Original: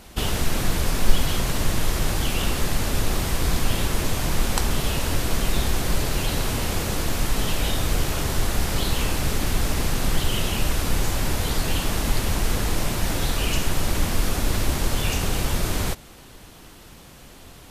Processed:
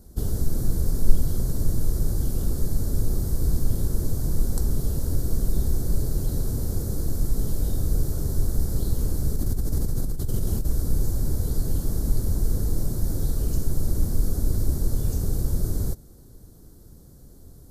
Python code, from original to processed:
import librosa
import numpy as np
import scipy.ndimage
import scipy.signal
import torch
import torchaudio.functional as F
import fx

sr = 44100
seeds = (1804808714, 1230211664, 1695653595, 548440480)

y = fx.curve_eq(x, sr, hz=(120.0, 190.0, 440.0, 640.0, 980.0, 1500.0, 2700.0, 4300.0, 13000.0), db=(0, -4, -5, -12, -17, -14, -27, -5, 7))
y = fx.over_compress(y, sr, threshold_db=-23.0, ratio=-1.0, at=(9.36, 10.67))
y = fx.tilt_shelf(y, sr, db=6.0, hz=1500.0)
y = y * 10.0 ** (-5.0 / 20.0)